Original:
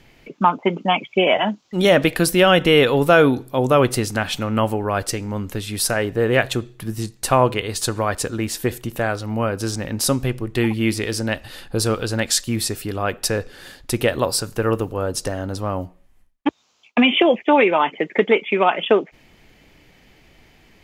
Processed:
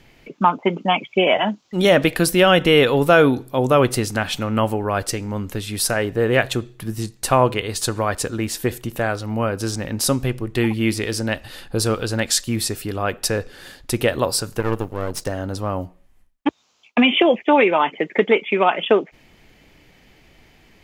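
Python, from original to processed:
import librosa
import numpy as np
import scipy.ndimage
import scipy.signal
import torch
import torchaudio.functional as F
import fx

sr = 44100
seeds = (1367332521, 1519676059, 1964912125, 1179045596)

y = fx.halfwave_gain(x, sr, db=-12.0, at=(14.6, 15.27))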